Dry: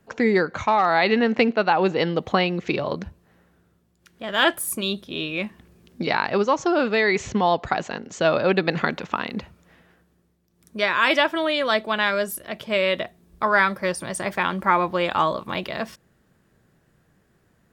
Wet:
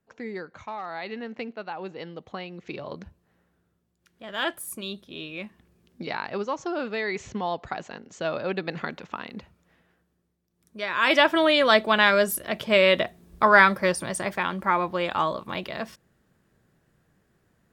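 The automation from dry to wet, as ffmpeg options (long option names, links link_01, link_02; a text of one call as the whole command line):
ffmpeg -i in.wav -af "volume=3dB,afade=type=in:start_time=2.47:duration=0.56:silence=0.446684,afade=type=in:start_time=10.86:duration=0.49:silence=0.251189,afade=type=out:start_time=13.62:duration=0.81:silence=0.446684" out.wav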